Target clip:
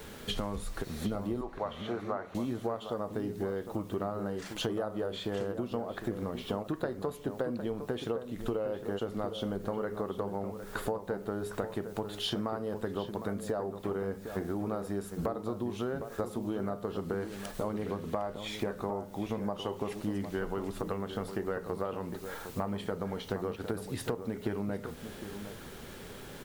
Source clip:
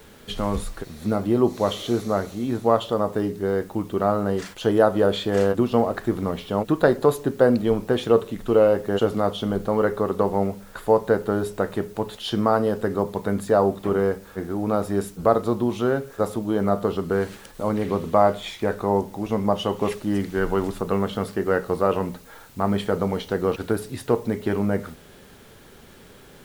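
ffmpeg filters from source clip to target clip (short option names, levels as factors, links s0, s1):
-filter_complex "[0:a]asettb=1/sr,asplit=3[s0][s1][s2];[s0]atrim=end=1.414[s3];[s1]atrim=start=1.41:end=2.35,asetpts=PTS-STARTPTS,afade=t=in:d=0.004:c=qsin,afade=t=out:st=0.936:d=0.004:c=qsin,acrossover=split=580 2400:gain=0.178 1 0.0708[s4][s5][s6];[s4][s5][s6]amix=inputs=3:normalize=0[s7];[s2]atrim=start=2.346[s8];[s3][s7]acrossfade=d=0.004:c1=hsin:c2=qsin[s9];[s9][s8]acrossfade=d=0.004:c1=qsin:c2=hsin,acompressor=threshold=0.0251:ratio=16,asplit=2[s10][s11];[s11]adelay=758,volume=0.355,highshelf=f=4000:g=-17.1[s12];[s10][s12]amix=inputs=2:normalize=0,volume=1.19"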